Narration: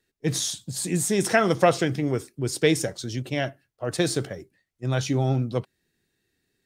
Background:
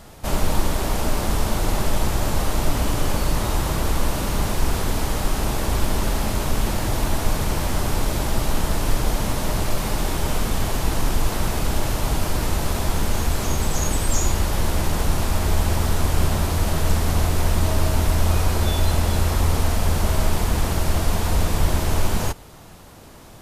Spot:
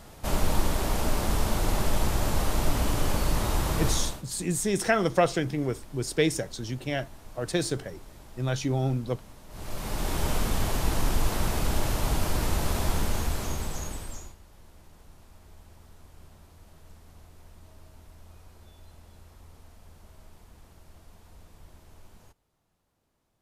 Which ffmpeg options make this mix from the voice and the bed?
-filter_complex "[0:a]adelay=3550,volume=-3.5dB[a];[1:a]volume=17dB,afade=t=out:st=3.88:d=0.35:silence=0.0841395,afade=t=in:st=9.49:d=0.72:silence=0.0841395,afade=t=out:st=12.89:d=1.47:silence=0.0421697[b];[a][b]amix=inputs=2:normalize=0"

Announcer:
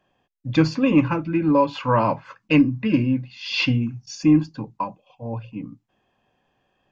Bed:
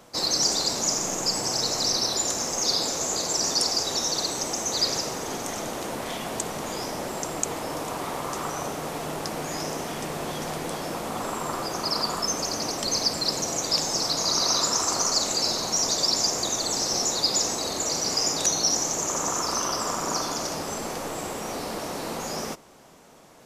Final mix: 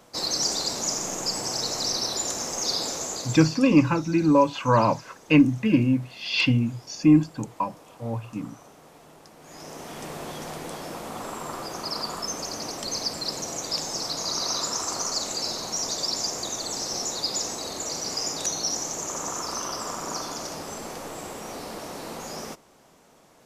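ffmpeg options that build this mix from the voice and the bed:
-filter_complex "[0:a]adelay=2800,volume=-0.5dB[a];[1:a]volume=12dB,afade=t=out:st=2.92:d=0.72:silence=0.149624,afade=t=in:st=9.39:d=0.69:silence=0.188365[b];[a][b]amix=inputs=2:normalize=0"

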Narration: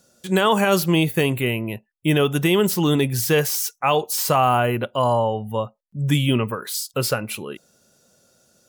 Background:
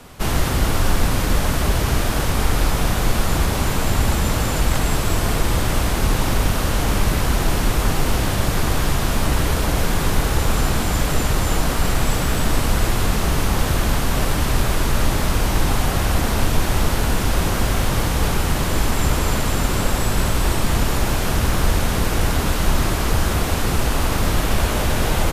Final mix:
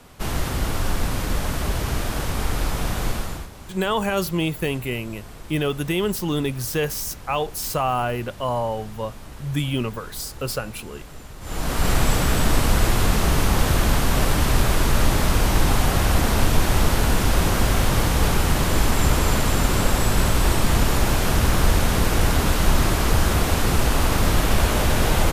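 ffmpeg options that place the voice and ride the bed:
-filter_complex "[0:a]adelay=3450,volume=-5dB[a];[1:a]volume=15.5dB,afade=t=out:st=3.07:d=0.42:silence=0.16788,afade=t=in:st=11.4:d=0.52:silence=0.0891251[b];[a][b]amix=inputs=2:normalize=0"

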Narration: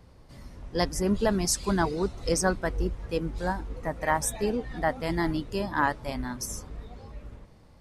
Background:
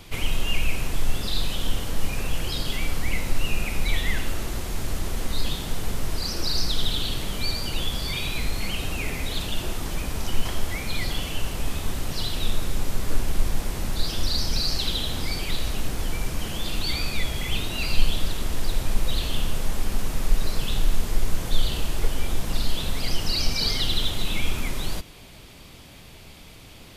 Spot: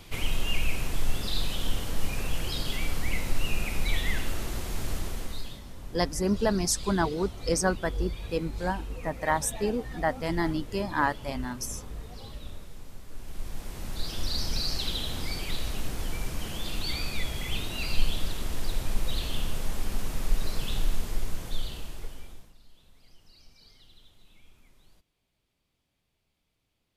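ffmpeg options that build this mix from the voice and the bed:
-filter_complex "[0:a]adelay=5200,volume=-0.5dB[a];[1:a]volume=11dB,afade=t=out:st=4.93:d=0.68:silence=0.158489,afade=t=in:st=13.12:d=1.3:silence=0.188365,afade=t=out:st=20.81:d=1.73:silence=0.0421697[b];[a][b]amix=inputs=2:normalize=0"

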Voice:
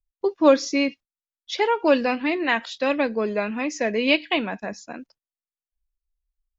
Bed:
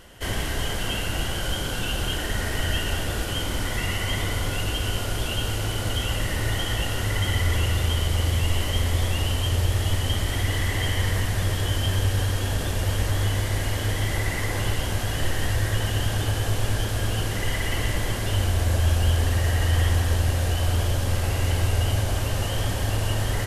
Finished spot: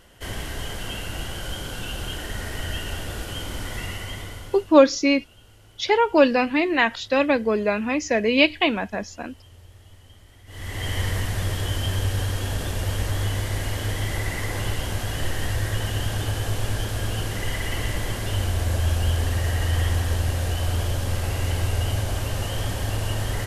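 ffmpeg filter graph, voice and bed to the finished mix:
-filter_complex "[0:a]adelay=4300,volume=2.5dB[a];[1:a]volume=19.5dB,afade=t=out:st=3.8:d=0.97:silence=0.0891251,afade=t=in:st=10.46:d=0.51:silence=0.0630957[b];[a][b]amix=inputs=2:normalize=0"

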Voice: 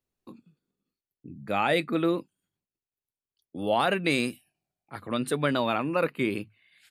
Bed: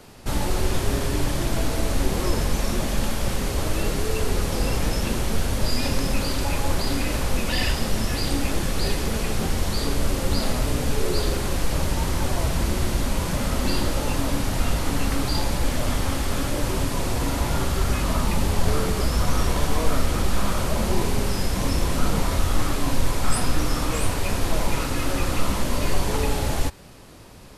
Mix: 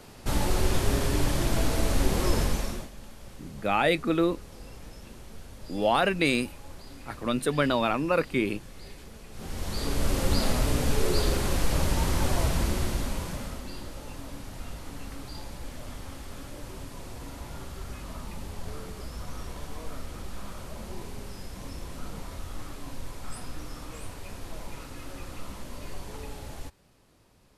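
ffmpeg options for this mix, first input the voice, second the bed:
-filter_complex "[0:a]adelay=2150,volume=1dB[a];[1:a]volume=17.5dB,afade=t=out:st=2.4:d=0.5:silence=0.105925,afade=t=in:st=9.31:d=0.89:silence=0.105925,afade=t=out:st=12.4:d=1.26:silence=0.188365[b];[a][b]amix=inputs=2:normalize=0"

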